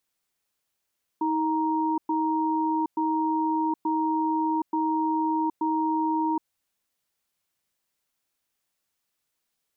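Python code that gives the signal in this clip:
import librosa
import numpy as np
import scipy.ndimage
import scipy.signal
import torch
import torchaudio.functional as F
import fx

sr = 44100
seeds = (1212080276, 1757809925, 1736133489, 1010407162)

y = fx.cadence(sr, length_s=5.21, low_hz=317.0, high_hz=936.0, on_s=0.77, off_s=0.11, level_db=-25.0)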